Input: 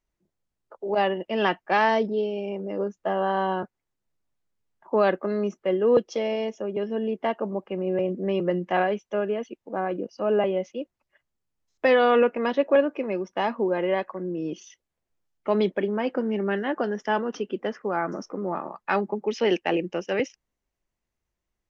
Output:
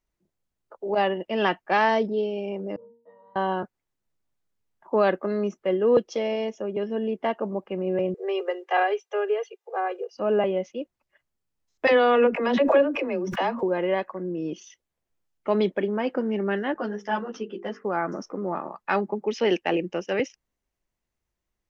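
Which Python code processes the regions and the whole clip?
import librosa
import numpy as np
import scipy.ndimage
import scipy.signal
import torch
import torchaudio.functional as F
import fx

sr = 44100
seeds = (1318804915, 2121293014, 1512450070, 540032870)

y = fx.chain(x, sr, fx.octave_resonator(note='A#', decay_s=0.52),
    fx.band_widen(depth_pct=40), at=(2.76, 3.36))
y = fx.chain(y, sr, fx.steep_highpass(hz=390.0, slope=96),
    fx.comb(ms=2.5, depth=0.55), at=(8.14, 10.15))
y = fx.chain(y, sr, fx.dispersion(late='lows', ms=67.0, hz=330.0),
    fx.pre_swell(db_per_s=50.0), at=(11.87, 13.63))
y = fx.chain(y, sr, fx.hum_notches(base_hz=50, count=9),
    fx.ensemble(), at=(16.74, 17.85))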